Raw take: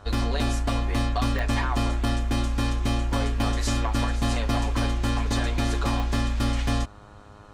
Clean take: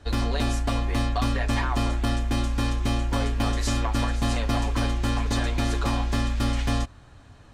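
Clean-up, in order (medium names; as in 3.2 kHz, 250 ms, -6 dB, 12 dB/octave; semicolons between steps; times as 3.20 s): de-click; de-hum 103.1 Hz, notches 14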